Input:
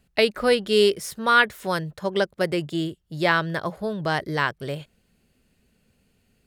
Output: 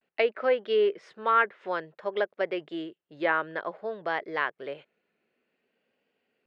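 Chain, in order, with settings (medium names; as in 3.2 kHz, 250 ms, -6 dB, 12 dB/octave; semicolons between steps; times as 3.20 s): Chebyshev band-pass 400–2400 Hz, order 2; vibrato 0.54 Hz 74 cents; low-pass that closes with the level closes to 2.2 kHz, closed at -16 dBFS; trim -4 dB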